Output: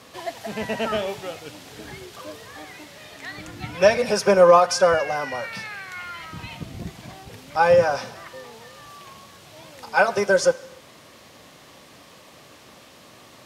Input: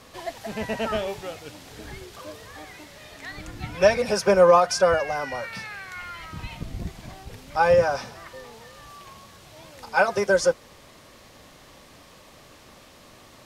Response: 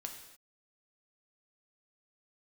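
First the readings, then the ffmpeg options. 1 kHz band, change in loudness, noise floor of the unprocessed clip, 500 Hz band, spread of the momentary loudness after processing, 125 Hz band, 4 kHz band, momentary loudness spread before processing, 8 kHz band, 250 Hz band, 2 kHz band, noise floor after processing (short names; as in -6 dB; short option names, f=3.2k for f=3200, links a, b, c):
+2.0 dB, +2.0 dB, -51 dBFS, +2.0 dB, 23 LU, 0.0 dB, +2.5 dB, 23 LU, +2.0 dB, +1.5 dB, +2.0 dB, -49 dBFS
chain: -filter_complex "[0:a]highpass=100,asplit=2[a][b];[b]equalizer=f=3k:t=o:w=0.77:g=5.5[c];[1:a]atrim=start_sample=2205[d];[c][d]afir=irnorm=-1:irlink=0,volume=-8.5dB[e];[a][e]amix=inputs=2:normalize=0"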